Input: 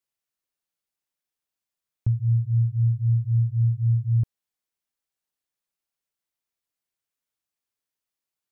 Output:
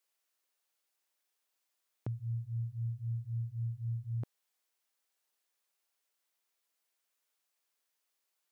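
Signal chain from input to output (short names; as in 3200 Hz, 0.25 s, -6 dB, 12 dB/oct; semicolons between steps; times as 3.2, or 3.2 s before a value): HPF 390 Hz 12 dB/oct; gain +5.5 dB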